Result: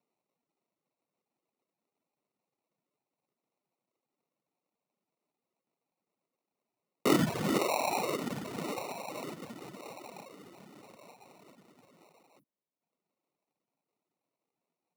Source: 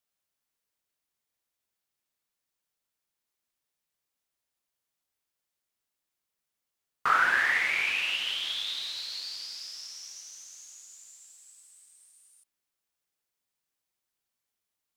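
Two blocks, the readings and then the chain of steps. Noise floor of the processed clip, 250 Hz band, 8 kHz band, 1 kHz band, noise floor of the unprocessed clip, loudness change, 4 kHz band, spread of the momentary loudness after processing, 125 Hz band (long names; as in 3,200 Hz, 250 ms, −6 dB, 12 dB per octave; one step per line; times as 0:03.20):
below −85 dBFS, +22.5 dB, −2.0 dB, −4.0 dB, below −85 dBFS, −5.0 dB, −11.5 dB, 19 LU, can't be measured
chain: decimation without filtering 27×
high-pass filter 150 Hz 24 dB per octave
healed spectral selection 0:12.42–0:12.62, 340–9,500 Hz after
reverb reduction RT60 0.98 s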